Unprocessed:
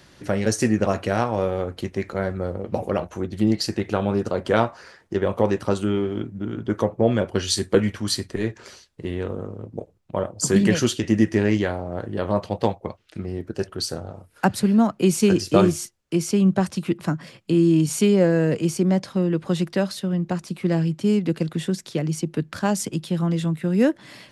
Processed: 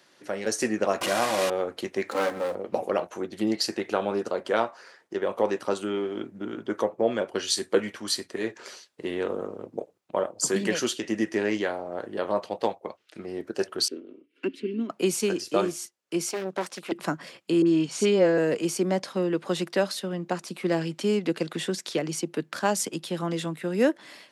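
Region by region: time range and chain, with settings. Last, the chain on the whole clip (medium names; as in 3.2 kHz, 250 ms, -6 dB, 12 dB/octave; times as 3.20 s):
1.01–1.50 s: one-bit delta coder 64 kbps, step -18 dBFS + comb of notches 440 Hz
2.11–2.55 s: comb filter that takes the minimum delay 3.8 ms + waveshaping leveller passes 1 + treble shelf 6.5 kHz +10 dB
13.88–14.90 s: vowel filter i + small resonant body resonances 380/960/2700 Hz, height 17 dB, ringing for 30 ms
16.29–16.92 s: high-pass 430 Hz 6 dB/octave + valve stage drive 18 dB, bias 0.6 + loudspeaker Doppler distortion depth 0.82 ms
17.62–18.38 s: low-pass 5.8 kHz + phase dispersion highs, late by 46 ms, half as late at 1.7 kHz
20.81–22.18 s: treble shelf 9.1 kHz -5.5 dB + tape noise reduction on one side only encoder only
whole clip: level rider gain up to 9.5 dB; high-pass 340 Hz 12 dB/octave; trim -6.5 dB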